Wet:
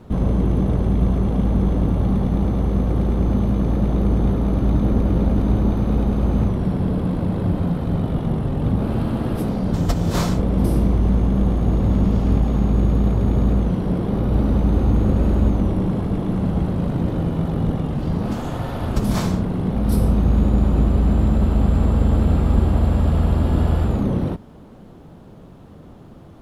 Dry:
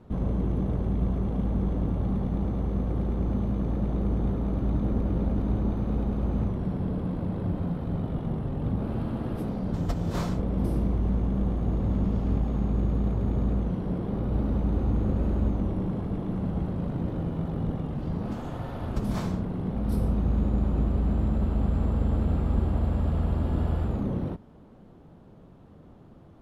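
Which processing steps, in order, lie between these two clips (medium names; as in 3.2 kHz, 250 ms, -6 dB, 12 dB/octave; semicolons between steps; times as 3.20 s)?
treble shelf 3.4 kHz +7 dB; trim +8.5 dB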